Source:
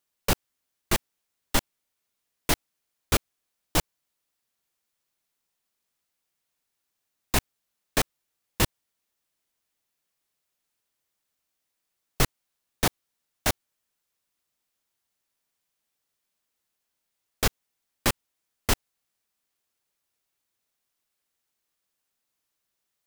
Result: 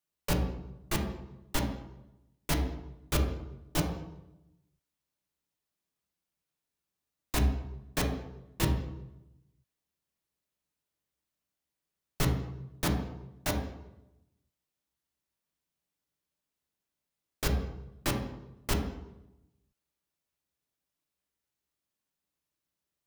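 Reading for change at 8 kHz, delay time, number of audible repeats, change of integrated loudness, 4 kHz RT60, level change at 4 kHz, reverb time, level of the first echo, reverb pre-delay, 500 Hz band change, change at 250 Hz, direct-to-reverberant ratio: −8.0 dB, no echo audible, no echo audible, −5.0 dB, 0.70 s, −7.5 dB, 0.90 s, no echo audible, 3 ms, −3.5 dB, +0.5 dB, 1.5 dB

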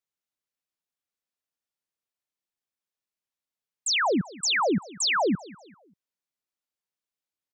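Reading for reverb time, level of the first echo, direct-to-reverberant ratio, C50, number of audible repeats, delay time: no reverb audible, −21.0 dB, no reverb audible, no reverb audible, 2, 195 ms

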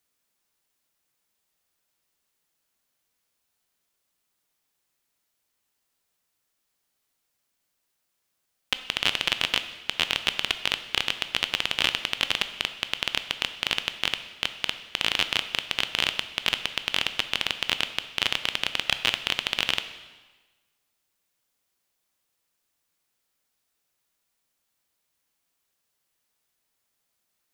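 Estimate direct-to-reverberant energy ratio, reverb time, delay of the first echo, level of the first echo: 9.5 dB, 1.3 s, no echo audible, no echo audible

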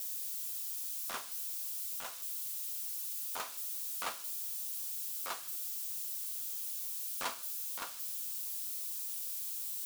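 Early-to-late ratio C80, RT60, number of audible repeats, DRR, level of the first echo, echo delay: 21.5 dB, 0.60 s, no echo audible, 10.0 dB, no echo audible, no echo audible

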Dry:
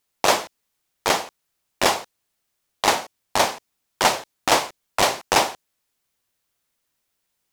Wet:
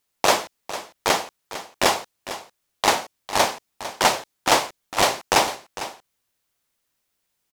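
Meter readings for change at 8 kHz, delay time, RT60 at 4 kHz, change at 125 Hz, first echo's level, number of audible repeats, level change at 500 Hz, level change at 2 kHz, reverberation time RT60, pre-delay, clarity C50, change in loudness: 0.0 dB, 452 ms, no reverb audible, 0.0 dB, −13.5 dB, 1, 0.0 dB, 0.0 dB, no reverb audible, no reverb audible, no reverb audible, 0.0 dB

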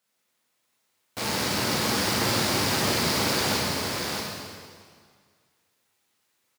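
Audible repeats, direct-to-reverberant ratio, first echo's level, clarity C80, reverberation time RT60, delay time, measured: 1, −6.5 dB, −4.0 dB, −1.5 dB, 1.9 s, 636 ms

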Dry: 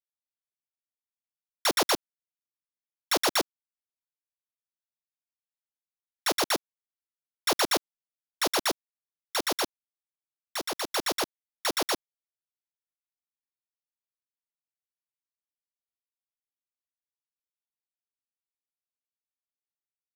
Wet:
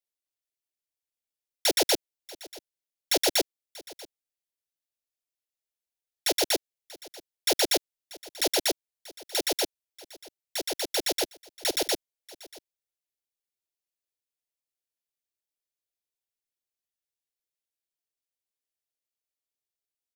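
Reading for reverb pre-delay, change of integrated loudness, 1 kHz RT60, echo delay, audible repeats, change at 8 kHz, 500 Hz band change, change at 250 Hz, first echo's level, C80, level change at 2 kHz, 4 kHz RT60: no reverb audible, +1.5 dB, no reverb audible, 637 ms, 1, +3.0 dB, +2.5 dB, 0.0 dB, −20.5 dB, no reverb audible, −2.0 dB, no reverb audible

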